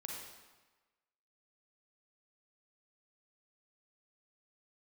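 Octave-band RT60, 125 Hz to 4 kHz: 1.1 s, 1.2 s, 1.2 s, 1.3 s, 1.2 s, 1.0 s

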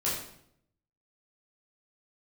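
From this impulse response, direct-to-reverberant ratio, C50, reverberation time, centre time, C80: -8.0 dB, 2.5 dB, 0.70 s, 50 ms, 6.0 dB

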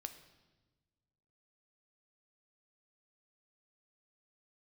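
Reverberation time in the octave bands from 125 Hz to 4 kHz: 2.1 s, 1.8 s, 1.4 s, 1.1 s, 1.0 s, 1.1 s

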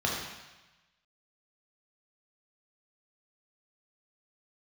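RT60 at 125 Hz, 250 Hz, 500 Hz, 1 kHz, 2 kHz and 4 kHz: 1.2 s, 1.0 s, 1.0 s, 1.2 s, 1.2 s, 1.2 s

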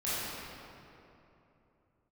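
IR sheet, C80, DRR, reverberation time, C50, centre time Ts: -3.0 dB, -12.5 dB, 3.0 s, -6.0 dB, 199 ms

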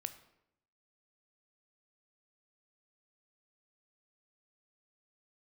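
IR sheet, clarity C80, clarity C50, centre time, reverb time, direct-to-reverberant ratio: 15.5 dB, 13.0 dB, 7 ms, 0.80 s, 9.5 dB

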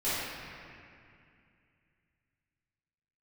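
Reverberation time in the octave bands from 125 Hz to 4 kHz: 3.3 s, 3.0 s, 2.4 s, 2.4 s, 2.6 s, 1.8 s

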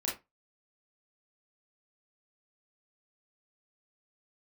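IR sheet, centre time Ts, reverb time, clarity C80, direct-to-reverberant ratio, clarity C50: 33 ms, 0.20 s, 16.0 dB, -4.5 dB, 6.0 dB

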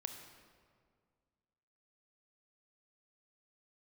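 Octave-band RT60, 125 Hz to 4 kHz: 2.3 s, 2.3 s, 2.1 s, 1.9 s, 1.5 s, 1.2 s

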